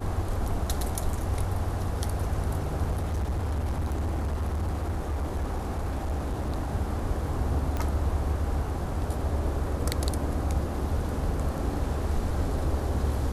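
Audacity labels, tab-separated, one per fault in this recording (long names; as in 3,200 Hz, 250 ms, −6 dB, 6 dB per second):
2.910000	6.730000	clipping −25 dBFS
7.770000	7.770000	click −18 dBFS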